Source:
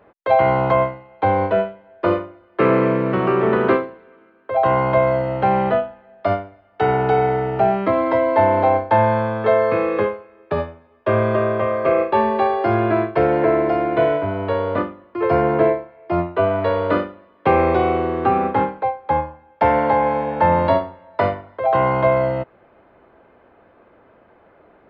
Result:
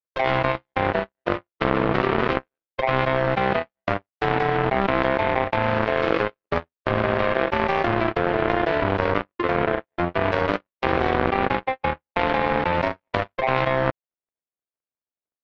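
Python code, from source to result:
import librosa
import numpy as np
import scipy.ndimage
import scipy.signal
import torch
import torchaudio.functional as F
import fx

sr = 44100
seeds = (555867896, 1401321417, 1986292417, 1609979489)

y = fx.stretch_vocoder(x, sr, factor=0.62)
y = fx.power_curve(y, sr, exponent=3.0)
y = fx.env_flatten(y, sr, amount_pct=100)
y = F.gain(torch.from_numpy(y), -1.0).numpy()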